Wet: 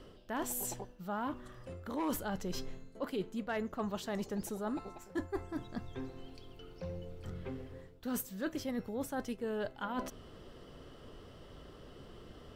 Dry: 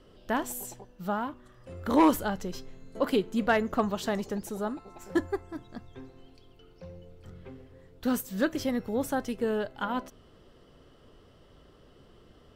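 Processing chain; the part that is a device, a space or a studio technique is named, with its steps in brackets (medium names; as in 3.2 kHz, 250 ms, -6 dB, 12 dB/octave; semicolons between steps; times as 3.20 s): compression on the reversed sound (reverse; compression 6:1, threshold -39 dBFS, peak gain reduction 19.5 dB; reverse); trim +4 dB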